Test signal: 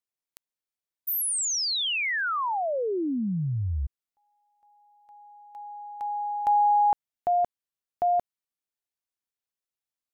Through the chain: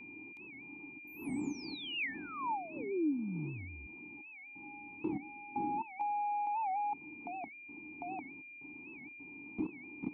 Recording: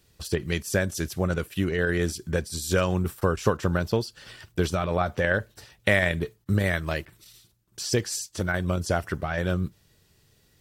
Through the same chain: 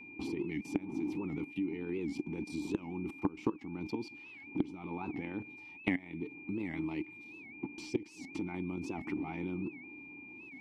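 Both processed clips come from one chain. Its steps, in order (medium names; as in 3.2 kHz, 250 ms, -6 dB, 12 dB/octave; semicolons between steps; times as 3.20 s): wind noise 300 Hz -43 dBFS; level held to a coarse grid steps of 20 dB; dynamic bell 220 Hz, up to +6 dB, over -50 dBFS, Q 0.74; vowel filter u; whistle 2.4 kHz -66 dBFS; compression 3:1, threshold -51 dBFS; warped record 78 rpm, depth 160 cents; trim +17 dB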